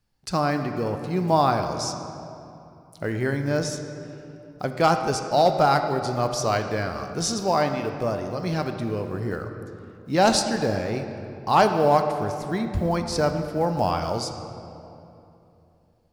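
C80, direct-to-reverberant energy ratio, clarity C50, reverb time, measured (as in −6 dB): 8.0 dB, 6.0 dB, 7.0 dB, 2.9 s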